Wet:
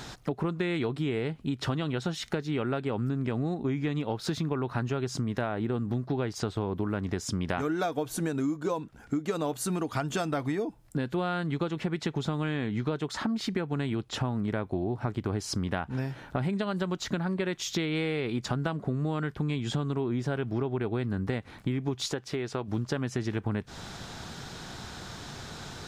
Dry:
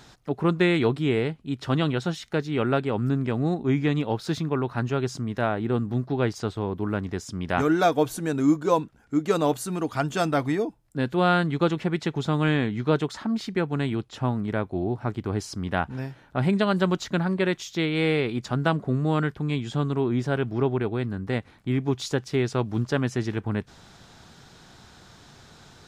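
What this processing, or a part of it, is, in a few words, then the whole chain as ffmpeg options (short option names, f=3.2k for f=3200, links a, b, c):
serial compression, peaks first: -filter_complex "[0:a]acompressor=threshold=-30dB:ratio=6,acompressor=threshold=-39dB:ratio=2,asettb=1/sr,asplit=3[a][b][c];[a]atrim=end=22.064[d];[b]atrim=start=22.06:end=22.68,asetpts=PTS-STARTPTS,afade=t=in:d=0.004:c=qsin,afade=t=out:st=0.616:d=0.004:c=qsin,bass=f=250:g=-6,treble=f=4k:g=-4[e];[c]atrim=start=22.676[f];[d][e]acrossfade=d=0.004:c1=hsin:c2=qsin[g];[g][f]acrossfade=d=0.004:c1=qsin:c2=hsin,volume=8.5dB"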